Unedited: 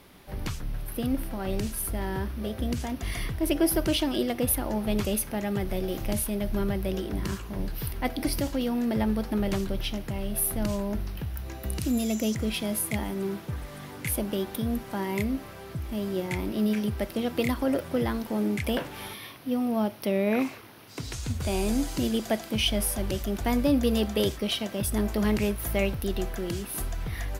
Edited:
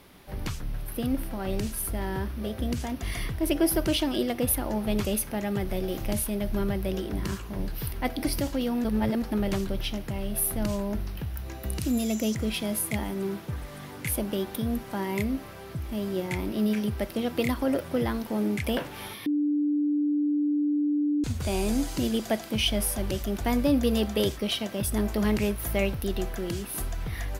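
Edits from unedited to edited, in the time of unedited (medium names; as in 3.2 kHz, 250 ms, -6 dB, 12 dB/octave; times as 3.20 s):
8.84–9.22 s: reverse
19.26–21.24 s: bleep 294 Hz -22 dBFS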